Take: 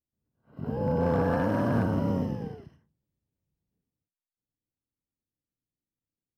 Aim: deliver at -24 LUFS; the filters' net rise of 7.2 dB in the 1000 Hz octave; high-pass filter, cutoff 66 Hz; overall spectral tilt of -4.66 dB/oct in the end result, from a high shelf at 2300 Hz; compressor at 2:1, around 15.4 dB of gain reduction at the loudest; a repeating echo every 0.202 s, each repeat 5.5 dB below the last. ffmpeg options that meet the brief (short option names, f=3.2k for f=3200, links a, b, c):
-af "highpass=66,equalizer=f=1k:t=o:g=7.5,highshelf=f=2.3k:g=7,acompressor=threshold=-49dB:ratio=2,aecho=1:1:202|404|606|808|1010|1212|1414:0.531|0.281|0.149|0.079|0.0419|0.0222|0.0118,volume=16dB"